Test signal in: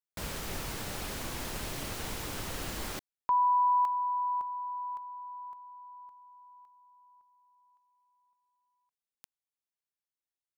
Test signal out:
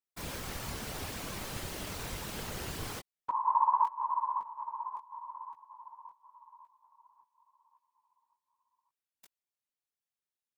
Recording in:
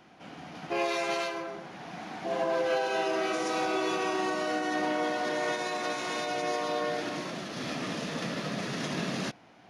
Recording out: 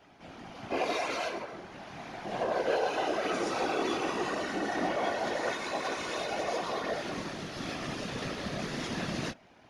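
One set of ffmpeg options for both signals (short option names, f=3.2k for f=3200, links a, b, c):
-af "flanger=delay=15.5:depth=6.3:speed=0.89,afftfilt=real='hypot(re,im)*cos(2*PI*random(0))':imag='hypot(re,im)*sin(2*PI*random(1))':win_size=512:overlap=0.75,volume=7dB"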